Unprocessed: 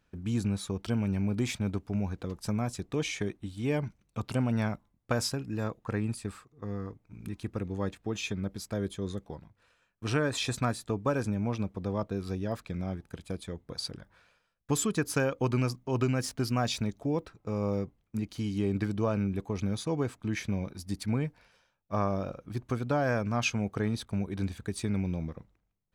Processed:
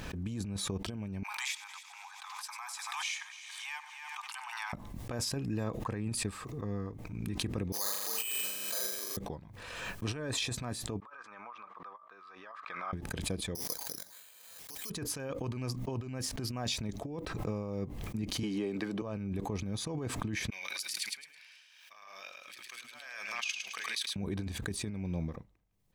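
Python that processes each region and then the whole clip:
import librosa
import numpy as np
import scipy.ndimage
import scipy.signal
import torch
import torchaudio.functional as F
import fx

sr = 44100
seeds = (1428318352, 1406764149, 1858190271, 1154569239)

y = fx.chain(x, sr, fx.steep_highpass(hz=820.0, slope=96),
    fx.echo_heads(ms=94, heads='first and third', feedback_pct=53, wet_db=-14.5), at=(1.23, 4.73))
y = fx.chain(y, sr, fx.highpass(hz=1100.0, slope=12),
    fx.room_flutter(wall_m=6.9, rt60_s=1.2),
    fx.resample_bad(factor=8, down='filtered', up='zero_stuff'), at=(7.72, 9.17))
y = fx.chain(y, sr, fx.ladder_bandpass(hz=1300.0, resonance_pct=75),
    fx.over_compress(threshold_db=-49.0, ratio=-0.5), at=(11.0, 12.93))
y = fx.chain(y, sr, fx.weighting(curve='A'),
    fx.resample_bad(factor=8, down='none', up='zero_stuff'), at=(13.55, 14.9))
y = fx.chain(y, sr, fx.highpass(hz=330.0, slope=12),
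    fx.high_shelf(hz=4900.0, db=-6.0),
    fx.band_squash(depth_pct=100), at=(18.43, 19.02))
y = fx.chain(y, sr, fx.over_compress(threshold_db=-36.0, ratio=-0.5),
    fx.highpass_res(hz=2400.0, q=1.5),
    fx.echo_feedback(ms=107, feedback_pct=21, wet_db=-5), at=(20.5, 24.16))
y = fx.over_compress(y, sr, threshold_db=-32.0, ratio=-0.5)
y = fx.notch(y, sr, hz=1400.0, q=8.2)
y = fx.pre_swell(y, sr, db_per_s=32.0)
y = y * 10.0 ** (-3.5 / 20.0)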